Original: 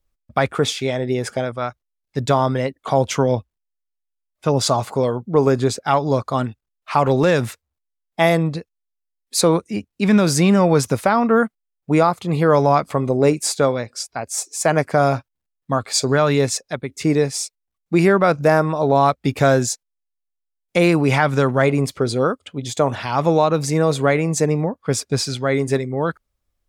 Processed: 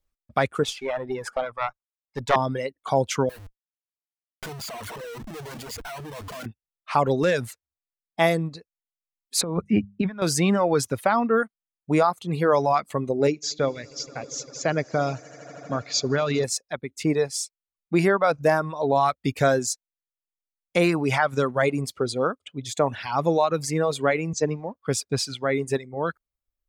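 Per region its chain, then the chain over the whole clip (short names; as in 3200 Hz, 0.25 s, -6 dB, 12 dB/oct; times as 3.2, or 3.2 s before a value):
0.63–2.36 bell 980 Hz +11.5 dB 1.6 oct + tube stage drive 7 dB, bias 0.8
3.29–6.46 ripple EQ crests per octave 1.8, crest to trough 16 dB + compressor 10:1, threshold -24 dBFS + Schmitt trigger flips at -42.5 dBFS
9.41–10.22 notches 50/100/150/200 Hz + negative-ratio compressor -23 dBFS + tone controls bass +9 dB, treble -14 dB
13.27–16.44 steep low-pass 6900 Hz 96 dB/oct + bell 960 Hz -7 dB 1.1 oct + swelling echo 80 ms, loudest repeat 5, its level -18 dB
24.33–24.74 G.711 law mismatch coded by A + steep low-pass 6700 Hz + three-band expander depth 70%
whole clip: reverb removal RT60 1.5 s; low shelf 220 Hz -3 dB; gain -3.5 dB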